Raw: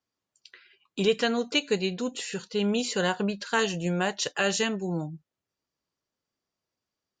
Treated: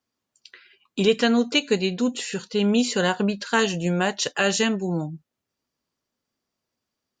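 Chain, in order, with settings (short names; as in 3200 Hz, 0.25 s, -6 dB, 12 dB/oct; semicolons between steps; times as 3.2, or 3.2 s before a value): bell 240 Hz +6.5 dB 0.24 oct; gain +4 dB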